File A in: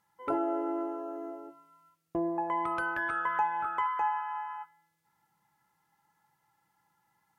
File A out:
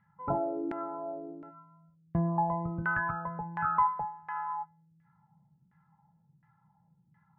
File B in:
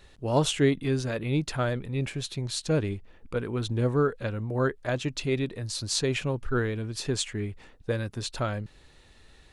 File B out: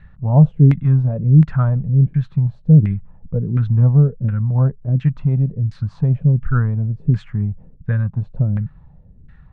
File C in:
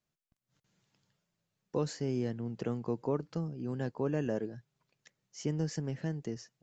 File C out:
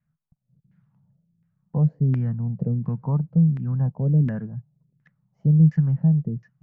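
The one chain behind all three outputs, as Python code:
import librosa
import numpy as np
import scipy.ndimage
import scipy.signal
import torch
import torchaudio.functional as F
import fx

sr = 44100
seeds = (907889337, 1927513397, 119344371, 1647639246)

y = fx.low_shelf_res(x, sr, hz=240.0, db=13.0, q=3.0)
y = fx.filter_lfo_lowpass(y, sr, shape='saw_down', hz=1.4, low_hz=300.0, high_hz=1900.0, q=2.8)
y = y * librosa.db_to_amplitude(-2.0)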